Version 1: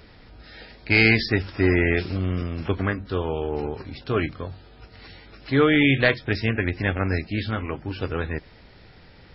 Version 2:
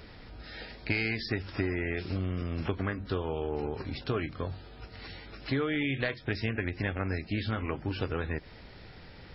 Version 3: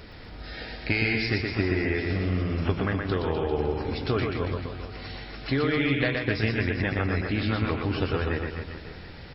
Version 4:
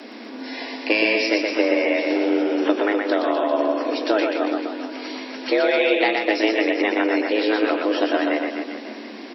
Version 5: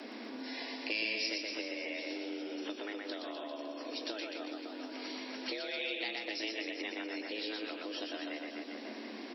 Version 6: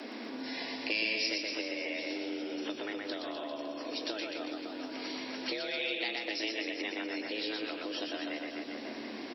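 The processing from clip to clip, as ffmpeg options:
-af "acompressor=threshold=-27dB:ratio=12"
-af "aecho=1:1:120|252|397.2|556.9|732.6:0.631|0.398|0.251|0.158|0.1,volume=4dB"
-af "afreqshift=210,volume=6dB"
-filter_complex "[0:a]acrossover=split=160|3000[a][b][c];[b]acompressor=threshold=-34dB:ratio=10[d];[a][d][c]amix=inputs=3:normalize=0,volume=-7dB"
-filter_complex "[0:a]asplit=4[a][b][c][d];[b]adelay=220,afreqshift=-71,volume=-21dB[e];[c]adelay=440,afreqshift=-142,volume=-29dB[f];[d]adelay=660,afreqshift=-213,volume=-36.9dB[g];[a][e][f][g]amix=inputs=4:normalize=0,volume=3dB"

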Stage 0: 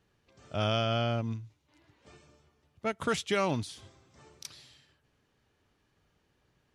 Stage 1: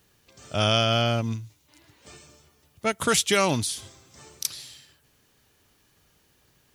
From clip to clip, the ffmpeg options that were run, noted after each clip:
-af "aemphasis=mode=production:type=75fm,volume=6.5dB"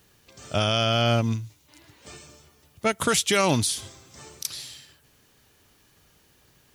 -af "alimiter=limit=-15dB:level=0:latency=1:release=97,volume=3.5dB"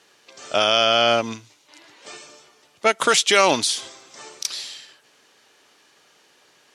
-af "highpass=410,lowpass=7k,volume=7dB"

